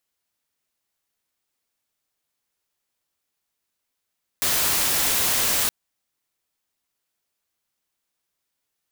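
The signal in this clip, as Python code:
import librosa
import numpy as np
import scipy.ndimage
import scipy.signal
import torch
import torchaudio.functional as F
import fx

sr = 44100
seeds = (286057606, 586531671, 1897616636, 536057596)

y = fx.noise_colour(sr, seeds[0], length_s=1.27, colour='white', level_db=-21.5)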